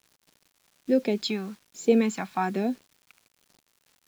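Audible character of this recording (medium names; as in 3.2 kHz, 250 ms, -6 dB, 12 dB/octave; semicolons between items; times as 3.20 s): phasing stages 2, 1.2 Hz, lowest notch 410–1100 Hz; a quantiser's noise floor 10-bit, dither none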